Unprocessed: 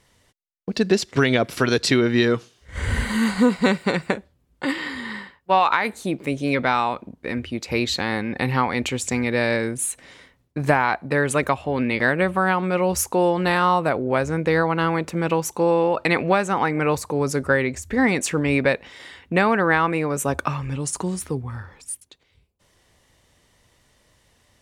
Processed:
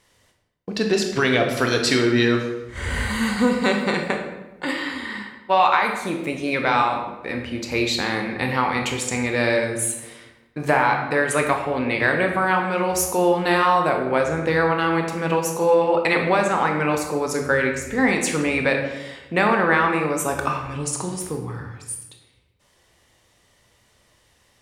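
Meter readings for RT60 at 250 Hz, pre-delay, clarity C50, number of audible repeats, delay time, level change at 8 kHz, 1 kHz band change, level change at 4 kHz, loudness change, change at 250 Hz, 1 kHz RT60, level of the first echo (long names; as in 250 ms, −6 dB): 1.3 s, 19 ms, 5.5 dB, no echo audible, no echo audible, +1.5 dB, +1.5 dB, +1.5 dB, +0.5 dB, −1.0 dB, 1.0 s, no echo audible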